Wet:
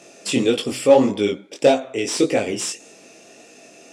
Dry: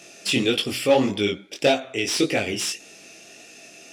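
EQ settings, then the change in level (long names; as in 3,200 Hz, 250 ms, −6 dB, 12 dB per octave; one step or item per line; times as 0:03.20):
dynamic equaliser 7,700 Hz, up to +5 dB, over −44 dBFS, Q 1.5
octave-band graphic EQ 125/250/500/1,000/2,000/4,000/8,000 Hz +8/+10/+12/+11/+4/+3/+9 dB
−10.0 dB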